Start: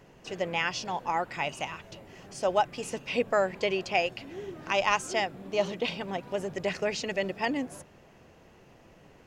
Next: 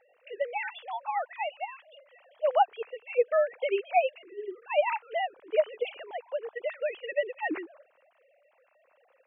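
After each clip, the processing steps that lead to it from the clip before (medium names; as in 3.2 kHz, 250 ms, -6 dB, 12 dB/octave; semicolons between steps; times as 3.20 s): formants replaced by sine waves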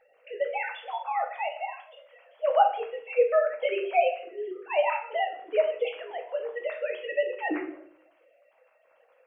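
simulated room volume 77 m³, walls mixed, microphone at 0.62 m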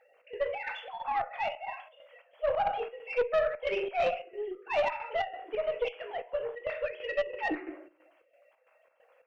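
bass shelf 250 Hz -6.5 dB; square tremolo 3 Hz, depth 60%, duty 65%; valve stage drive 22 dB, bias 0.3; trim +1 dB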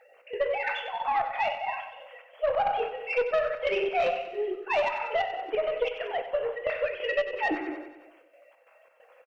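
bass shelf 190 Hz -4.5 dB; compression 3:1, threshold -31 dBFS, peak gain reduction 6.5 dB; on a send: feedback delay 94 ms, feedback 57%, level -11 dB; on the sum: trim +7 dB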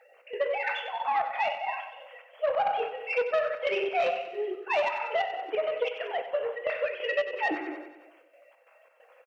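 high-pass 280 Hz 6 dB/octave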